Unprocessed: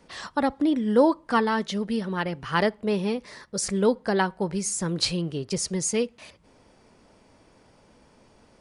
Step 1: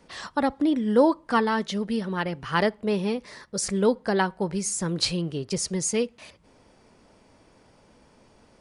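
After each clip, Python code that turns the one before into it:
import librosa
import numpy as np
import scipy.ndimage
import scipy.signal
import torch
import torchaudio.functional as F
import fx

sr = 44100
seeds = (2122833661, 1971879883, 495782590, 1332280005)

y = x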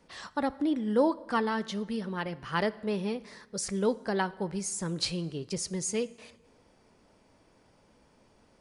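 y = fx.rev_plate(x, sr, seeds[0], rt60_s=1.3, hf_ratio=0.75, predelay_ms=0, drr_db=17.5)
y = y * 10.0 ** (-6.0 / 20.0)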